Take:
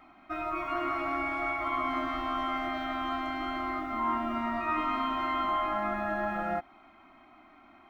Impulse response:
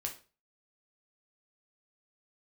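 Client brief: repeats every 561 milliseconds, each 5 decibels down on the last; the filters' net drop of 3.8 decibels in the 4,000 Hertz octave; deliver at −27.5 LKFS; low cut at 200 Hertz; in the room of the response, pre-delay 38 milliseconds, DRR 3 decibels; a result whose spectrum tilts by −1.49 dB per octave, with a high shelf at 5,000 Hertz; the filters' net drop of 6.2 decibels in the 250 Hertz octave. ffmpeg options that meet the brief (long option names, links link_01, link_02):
-filter_complex "[0:a]highpass=200,equalizer=frequency=250:width_type=o:gain=-6,equalizer=frequency=4000:width_type=o:gain=-8,highshelf=frequency=5000:gain=6,aecho=1:1:561|1122|1683|2244|2805|3366|3927:0.562|0.315|0.176|0.0988|0.0553|0.031|0.0173,asplit=2[link_01][link_02];[1:a]atrim=start_sample=2205,adelay=38[link_03];[link_02][link_03]afir=irnorm=-1:irlink=0,volume=-3dB[link_04];[link_01][link_04]amix=inputs=2:normalize=0,volume=2dB"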